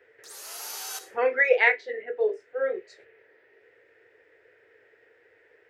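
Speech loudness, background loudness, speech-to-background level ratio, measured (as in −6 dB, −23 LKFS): −25.0 LKFS, −36.5 LKFS, 11.5 dB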